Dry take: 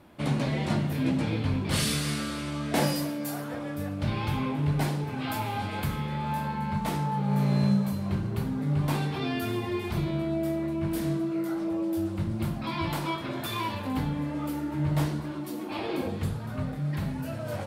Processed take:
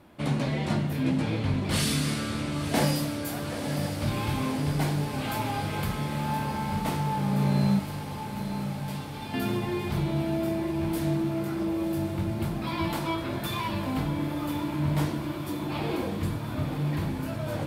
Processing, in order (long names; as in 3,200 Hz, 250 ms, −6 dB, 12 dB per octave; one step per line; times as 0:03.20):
0:07.79–0:09.34: guitar amp tone stack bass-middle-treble 5-5-5
feedback delay with all-pass diffusion 999 ms, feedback 78%, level −9 dB